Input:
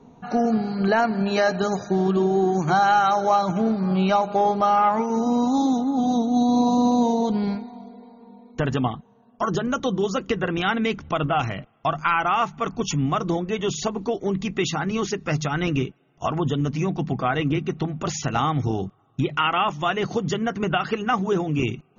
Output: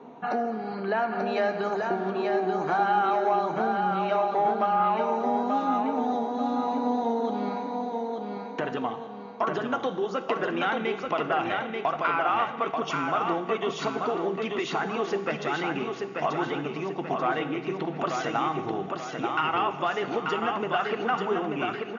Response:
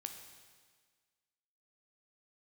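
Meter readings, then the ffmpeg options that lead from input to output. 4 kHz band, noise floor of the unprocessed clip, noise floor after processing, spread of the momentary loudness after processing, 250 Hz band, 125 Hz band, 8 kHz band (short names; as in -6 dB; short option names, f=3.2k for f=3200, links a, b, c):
-6.0 dB, -57 dBFS, -38 dBFS, 7 LU, -8.5 dB, -13.5 dB, n/a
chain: -filter_complex "[0:a]acompressor=threshold=-30dB:ratio=6,asoftclip=type=tanh:threshold=-22.5dB,highpass=350,lowpass=2.7k,aecho=1:1:886|1772|2658|3544|4430:0.631|0.265|0.111|0.0467|0.0196,asplit=2[a][b];[1:a]atrim=start_sample=2205[c];[b][c]afir=irnorm=-1:irlink=0,volume=7dB[d];[a][d]amix=inputs=2:normalize=0"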